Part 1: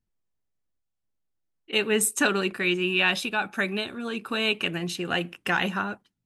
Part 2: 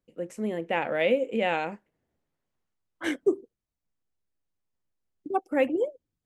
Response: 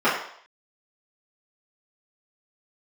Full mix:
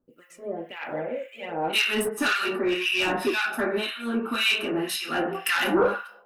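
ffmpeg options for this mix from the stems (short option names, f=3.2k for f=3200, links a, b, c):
-filter_complex "[0:a]equalizer=f=5k:t=o:w=0.97:g=9.5,aexciter=amount=4.8:drive=9.4:freq=8.9k,volume=-1dB,asplit=2[a][b];[b]volume=-11.5dB[c];[1:a]alimiter=limit=-17.5dB:level=0:latency=1:release=199,aphaser=in_gain=1:out_gain=1:delay=1.8:decay=0.65:speed=1.2:type=sinusoidal,volume=-3.5dB,asplit=3[d][e][f];[e]volume=-17.5dB[g];[f]apad=whole_len=275756[h];[a][h]sidechaingate=range=-7dB:threshold=-57dB:ratio=16:detection=peak[i];[2:a]atrim=start_sample=2205[j];[c][g]amix=inputs=2:normalize=0[k];[k][j]afir=irnorm=-1:irlink=0[l];[i][d][l]amix=inputs=3:normalize=0,asoftclip=type=tanh:threshold=-12.5dB,acrossover=split=1300[m][n];[m]aeval=exprs='val(0)*(1-1/2+1/2*cos(2*PI*1.9*n/s))':c=same[o];[n]aeval=exprs='val(0)*(1-1/2-1/2*cos(2*PI*1.9*n/s))':c=same[p];[o][p]amix=inputs=2:normalize=0,bandreject=f=7.4k:w=24"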